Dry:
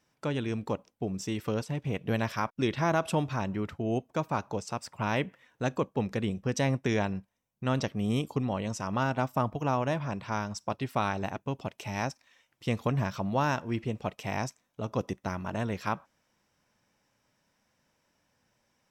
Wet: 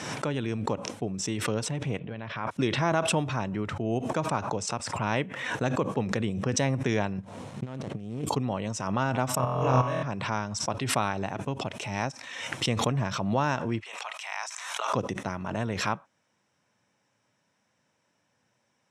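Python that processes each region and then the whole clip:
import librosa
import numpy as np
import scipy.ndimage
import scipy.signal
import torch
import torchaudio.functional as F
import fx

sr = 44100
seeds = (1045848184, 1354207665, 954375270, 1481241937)

y = fx.chain(x, sr, fx.lowpass(hz=3700.0, slope=24),
    fx.level_steps(step_db=13), at=(1.99, 2.47))
y = fx.chain(y, sr, fx.median_filter(points=25),
    fx.over_compress(threshold_db=-36.0, ratio=-0.5), at=(7.18, 8.25))
y = fx.chain(y, sr, fx.comb(ms=1.8, depth=0.32),
    fx.room_flutter(wall_m=4.0, rt60_s=0.99),
    fx.level_steps(step_db=10), at=(9.35, 10.03))
y = fx.chain(y, sr, fx.highpass(hz=930.0, slope=24),
    fx.sustainer(db_per_s=40.0), at=(13.8, 14.93))
y = scipy.signal.sosfilt(scipy.signal.ellip(3, 1.0, 50, [100.0, 9300.0], 'bandpass', fs=sr, output='sos'), y)
y = fx.notch(y, sr, hz=4700.0, q=12.0)
y = fx.pre_swell(y, sr, db_per_s=41.0)
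y = y * 10.0 ** (1.0 / 20.0)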